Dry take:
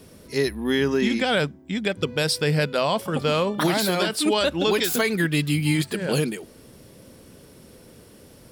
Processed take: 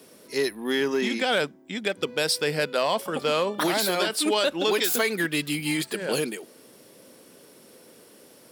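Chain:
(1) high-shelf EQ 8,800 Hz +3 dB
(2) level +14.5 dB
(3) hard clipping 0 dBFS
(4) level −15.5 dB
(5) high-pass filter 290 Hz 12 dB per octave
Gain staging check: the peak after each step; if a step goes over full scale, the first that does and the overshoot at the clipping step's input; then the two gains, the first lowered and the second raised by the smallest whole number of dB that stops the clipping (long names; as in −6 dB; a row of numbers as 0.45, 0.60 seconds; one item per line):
−11.0, +3.5, 0.0, −15.5, −10.5 dBFS
step 2, 3.5 dB
step 2 +10.5 dB, step 4 −11.5 dB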